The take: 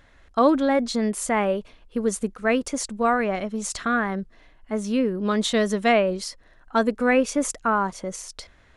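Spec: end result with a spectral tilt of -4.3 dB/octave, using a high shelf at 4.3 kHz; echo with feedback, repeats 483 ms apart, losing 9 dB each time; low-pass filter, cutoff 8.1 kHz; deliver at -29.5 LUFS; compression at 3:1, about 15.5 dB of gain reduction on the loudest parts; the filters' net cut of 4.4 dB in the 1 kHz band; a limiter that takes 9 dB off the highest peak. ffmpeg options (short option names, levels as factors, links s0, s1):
-af "lowpass=8100,equalizer=f=1000:t=o:g=-6,highshelf=f=4300:g=-6,acompressor=threshold=0.0141:ratio=3,alimiter=level_in=2.24:limit=0.0631:level=0:latency=1,volume=0.447,aecho=1:1:483|966|1449|1932:0.355|0.124|0.0435|0.0152,volume=3.55"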